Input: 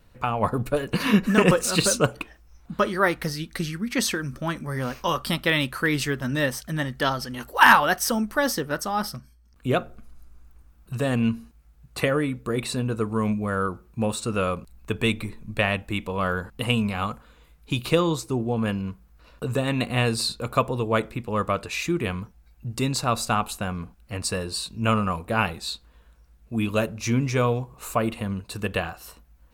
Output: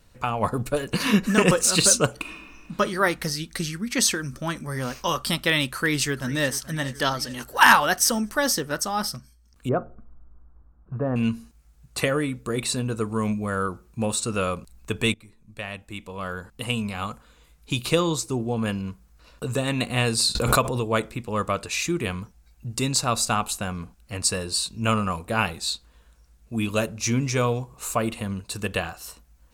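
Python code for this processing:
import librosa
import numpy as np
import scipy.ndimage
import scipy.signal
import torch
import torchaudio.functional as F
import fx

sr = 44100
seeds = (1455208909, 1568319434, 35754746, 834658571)

y = fx.reverb_throw(x, sr, start_s=2.16, length_s=0.58, rt60_s=1.8, drr_db=1.5)
y = fx.echo_throw(y, sr, start_s=5.73, length_s=0.84, ms=430, feedback_pct=60, wet_db=-17.0)
y = fx.lowpass(y, sr, hz=1300.0, slope=24, at=(9.69, 11.16))
y = fx.pre_swell(y, sr, db_per_s=37.0, at=(20.35, 20.85))
y = fx.edit(y, sr, fx.fade_in_from(start_s=15.14, length_s=2.59, floor_db=-19.5), tone=tone)
y = fx.peak_eq(y, sr, hz=7200.0, db=8.5, octaves=1.6)
y = y * librosa.db_to_amplitude(-1.0)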